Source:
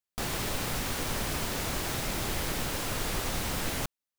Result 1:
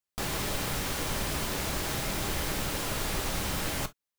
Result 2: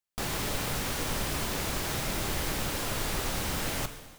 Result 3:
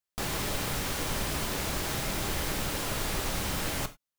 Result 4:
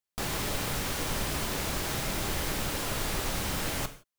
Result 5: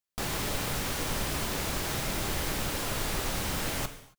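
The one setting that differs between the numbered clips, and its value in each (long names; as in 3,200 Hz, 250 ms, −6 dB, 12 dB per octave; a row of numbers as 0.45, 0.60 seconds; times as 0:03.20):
reverb whose tail is shaped and stops, gate: 80, 480, 120, 190, 300 milliseconds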